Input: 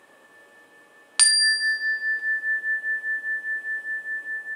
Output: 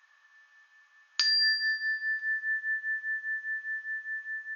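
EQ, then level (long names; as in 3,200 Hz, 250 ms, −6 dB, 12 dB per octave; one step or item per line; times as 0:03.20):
high-pass filter 1,300 Hz 24 dB per octave
linear-phase brick-wall low-pass 6,800 Hz
parametric band 2,800 Hz −6.5 dB 1.2 octaves
−2.5 dB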